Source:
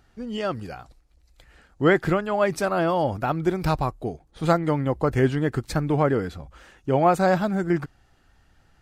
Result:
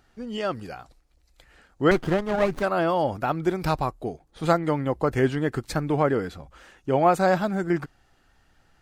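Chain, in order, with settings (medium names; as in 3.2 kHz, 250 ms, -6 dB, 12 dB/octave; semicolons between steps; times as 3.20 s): peaking EQ 70 Hz -5.5 dB 2.7 oct; 1.91–2.63 s: sliding maximum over 17 samples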